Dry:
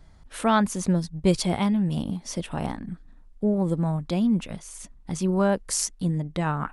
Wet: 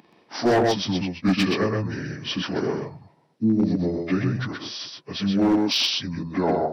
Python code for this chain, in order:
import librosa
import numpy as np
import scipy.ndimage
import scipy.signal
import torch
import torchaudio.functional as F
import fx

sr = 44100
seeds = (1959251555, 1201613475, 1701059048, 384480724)

p1 = fx.pitch_bins(x, sr, semitones=-11.0)
p2 = scipy.signal.sosfilt(scipy.signal.butter(4, 190.0, 'highpass', fs=sr, output='sos'), p1)
p3 = fx.low_shelf(p2, sr, hz=310.0, db=3.0)
p4 = fx.notch(p3, sr, hz=500.0, q=12.0)
p5 = p4 + fx.echo_single(p4, sr, ms=126, db=-4.0, dry=0)
p6 = np.clip(p5, -10.0 ** (-20.5 / 20.0), 10.0 ** (-20.5 / 20.0))
p7 = fx.rider(p6, sr, range_db=3, speed_s=0.5)
p8 = p6 + F.gain(torch.from_numpy(p7), -1.0).numpy()
y = F.gain(torch.from_numpy(p8), 1.5).numpy()